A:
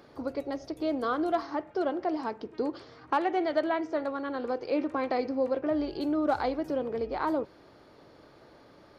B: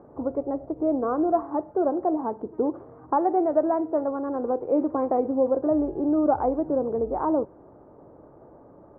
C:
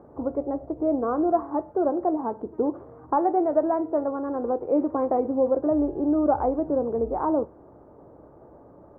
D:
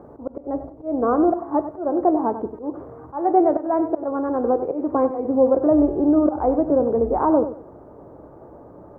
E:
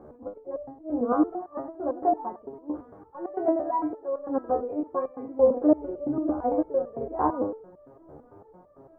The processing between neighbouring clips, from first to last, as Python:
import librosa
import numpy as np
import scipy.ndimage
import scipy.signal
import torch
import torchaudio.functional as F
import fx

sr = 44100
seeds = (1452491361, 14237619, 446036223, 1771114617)

y1 = scipy.signal.sosfilt(scipy.signal.butter(4, 1000.0, 'lowpass', fs=sr, output='sos'), x)
y1 = y1 * 10.0 ** (6.0 / 20.0)
y2 = fx.peak_eq(y1, sr, hz=71.0, db=7.5, octaves=0.26)
y2 = fx.comb_fb(y2, sr, f0_hz=58.0, decay_s=0.25, harmonics='all', damping=0.0, mix_pct=40)
y2 = y2 * 10.0 ** (2.5 / 20.0)
y3 = fx.auto_swell(y2, sr, attack_ms=218.0)
y3 = fx.echo_feedback(y3, sr, ms=95, feedback_pct=25, wet_db=-11.5)
y3 = y3 * 10.0 ** (6.0 / 20.0)
y4 = fx.resonator_held(y3, sr, hz=8.9, low_hz=75.0, high_hz=590.0)
y4 = y4 * 10.0 ** (4.5 / 20.0)